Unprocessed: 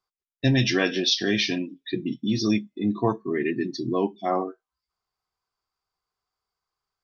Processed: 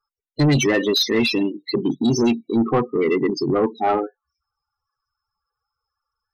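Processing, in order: loudest bins only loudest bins 16; soft clip -20.5 dBFS, distortion -12 dB; varispeed +11%; gain +9 dB

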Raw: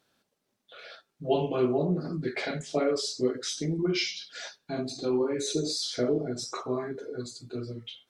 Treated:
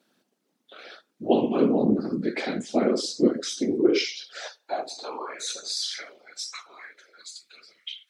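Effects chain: whisperiser; high-pass sweep 230 Hz -> 2200 Hz, 3.39–6.17; gain +1.5 dB

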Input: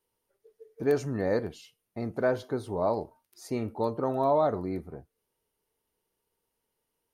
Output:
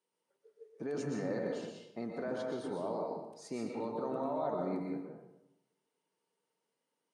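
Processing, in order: elliptic band-pass 160–8700 Hz, stop band 40 dB; limiter -25.5 dBFS, peak gain reduction 10.5 dB; reverb RT60 0.90 s, pre-delay 0.114 s, DRR 0 dB; gain -4.5 dB

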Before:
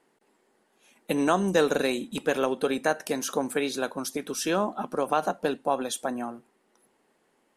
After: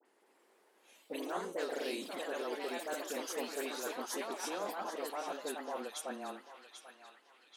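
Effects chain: HPF 300 Hz 24 dB/oct; reverse; compressor 4:1, threshold -37 dBFS, peak gain reduction 16.5 dB; reverse; dispersion highs, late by 54 ms, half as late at 1900 Hz; echoes that change speed 0.16 s, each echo +2 st, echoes 3; frequency shift -15 Hz; on a send: narrowing echo 0.789 s, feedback 55%, band-pass 2800 Hz, level -6.5 dB; on the sum: gain -3 dB

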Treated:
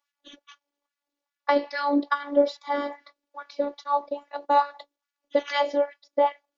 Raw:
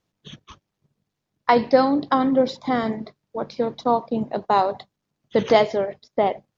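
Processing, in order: LFO high-pass sine 2.4 Hz 340–1700 Hz; robotiser 286 Hz; gain -3 dB

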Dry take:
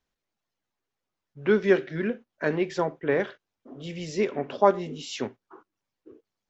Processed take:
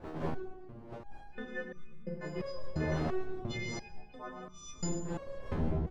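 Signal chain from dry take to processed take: frequency quantiser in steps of 3 st; wind noise 520 Hz -31 dBFS; gate -36 dBFS, range -12 dB; on a send at -10 dB: low shelf 420 Hz +9.5 dB + reverb RT60 0.85 s, pre-delay 0.136 s; on the sum: tempo 1.1×; reverse; compressor, threshold -29 dBFS, peak gain reduction 15 dB; reverse; split-band echo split 620 Hz, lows 0.29 s, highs 85 ms, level -13.5 dB; stepped resonator 2.9 Hz 79–1200 Hz; gain +8.5 dB

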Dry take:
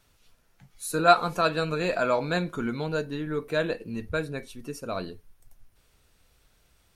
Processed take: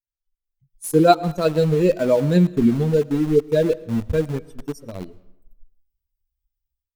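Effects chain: per-bin expansion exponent 2; EQ curve 460 Hz 0 dB, 1100 Hz -20 dB, 11000 Hz -7 dB; AGC gain up to 14.5 dB; in parallel at -3 dB: sample gate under -26 dBFS; on the sum: reverb RT60 0.85 s, pre-delay 65 ms, DRR 19.5 dB; gain -2.5 dB

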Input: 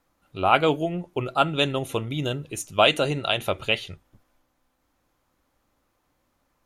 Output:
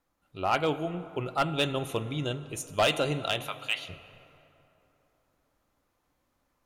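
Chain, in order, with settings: vocal rider within 3 dB 2 s; 3.47–3.88 HPF 880 Hz 24 dB/oct; plate-style reverb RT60 3.2 s, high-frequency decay 0.55×, DRR 13.5 dB; hard clip -12.5 dBFS, distortion -14 dB; 2–2.49 LPF 10000 Hz 24 dB/oct; gain -5.5 dB

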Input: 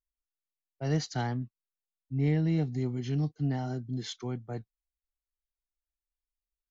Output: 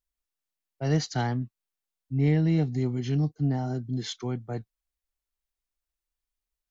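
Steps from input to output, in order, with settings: 3.17–3.75 bell 2800 Hz -8 dB 1.6 oct; gain +4 dB

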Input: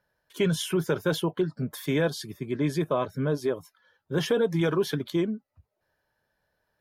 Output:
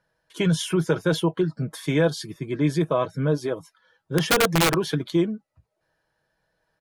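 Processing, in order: steep low-pass 11000 Hz 36 dB/oct; comb 6.2 ms, depth 43%; 4.18–4.78 wrapped overs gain 16 dB; gain +2.5 dB

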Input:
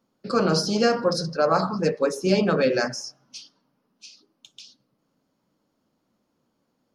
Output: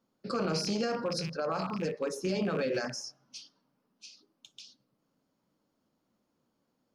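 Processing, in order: rattling part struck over -31 dBFS, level -27 dBFS; limiter -16.5 dBFS, peak gain reduction 8 dB; vocal rider within 3 dB 2 s; gain -6.5 dB

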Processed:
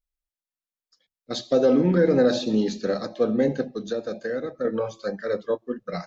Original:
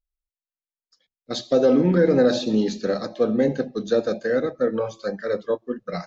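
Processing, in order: 3.65–4.65 compressor 2.5:1, threshold -26 dBFS, peak gain reduction 7.5 dB; gain -1.5 dB

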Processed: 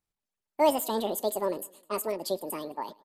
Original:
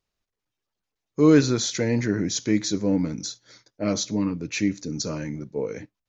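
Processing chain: on a send: feedback echo 0.214 s, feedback 49%, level -23 dB; on the sum: speed mistake 7.5 ips tape played at 15 ips; record warp 45 rpm, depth 100 cents; gain -6 dB

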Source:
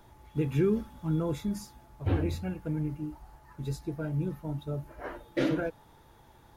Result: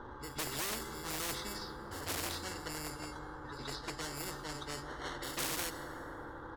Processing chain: downsampling 11025 Hz; in parallel at -5 dB: sample-and-hold 18×; on the sum: low-pass opened by the level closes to 1800 Hz, open at -22 dBFS; fixed phaser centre 660 Hz, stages 6; pre-echo 0.156 s -14.5 dB; plate-style reverb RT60 3.6 s, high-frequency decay 0.4×, DRR 14.5 dB; hard clip -27 dBFS, distortion -9 dB; spectral compressor 4:1; gain +12 dB

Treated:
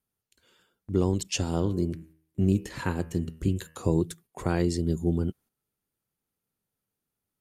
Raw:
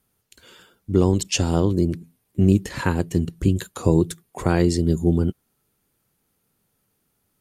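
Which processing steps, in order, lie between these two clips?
gate -44 dBFS, range -8 dB; 1.43–3.85 de-hum 79.63 Hz, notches 38; gain -7 dB

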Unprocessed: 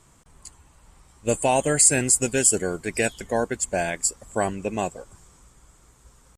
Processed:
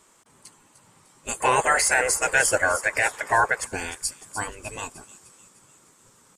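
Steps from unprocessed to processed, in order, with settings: notch 710 Hz, Q 12; spectral gate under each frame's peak -10 dB weak; 1.4–3.67 band shelf 960 Hz +15.5 dB 2.6 oct; limiter -11 dBFS, peak gain reduction 8 dB; thin delay 0.302 s, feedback 51%, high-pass 5100 Hz, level -9 dB; gain +1.5 dB

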